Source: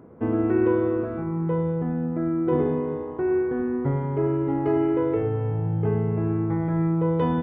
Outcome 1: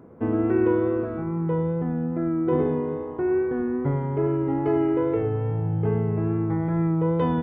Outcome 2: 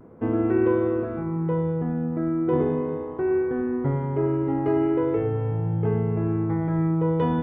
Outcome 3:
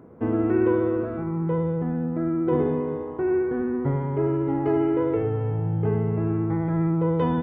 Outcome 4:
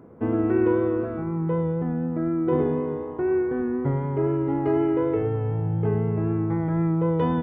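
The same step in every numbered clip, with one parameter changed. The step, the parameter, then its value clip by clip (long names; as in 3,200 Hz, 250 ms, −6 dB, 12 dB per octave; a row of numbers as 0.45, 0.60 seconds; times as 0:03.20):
pitch vibrato, speed: 2.4, 0.39, 15, 4 Hertz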